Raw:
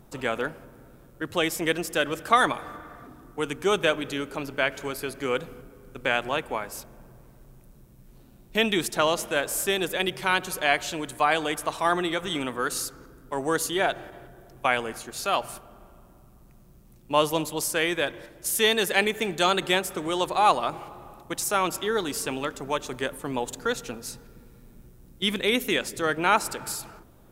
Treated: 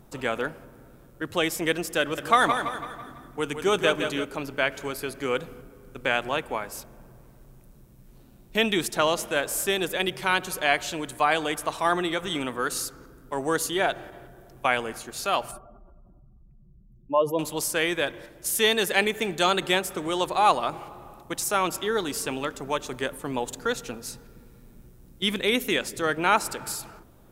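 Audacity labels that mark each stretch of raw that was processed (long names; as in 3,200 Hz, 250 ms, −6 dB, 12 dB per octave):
2.010000	4.250000	repeating echo 165 ms, feedback 46%, level −7.5 dB
15.510000	17.390000	expanding power law on the bin magnitudes exponent 2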